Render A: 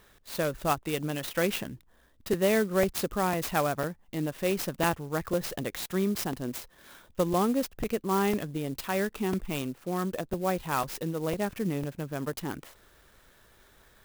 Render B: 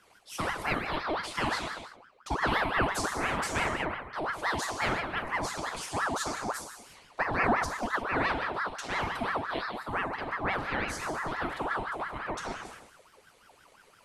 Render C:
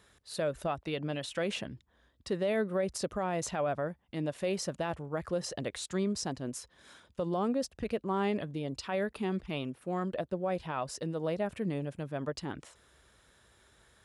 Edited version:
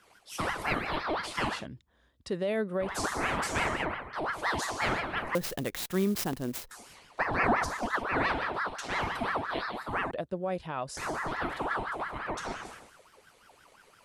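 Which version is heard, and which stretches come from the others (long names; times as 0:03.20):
B
0:01.55–0:02.91: punch in from C, crossfade 0.24 s
0:05.35–0:06.71: punch in from A
0:10.11–0:10.97: punch in from C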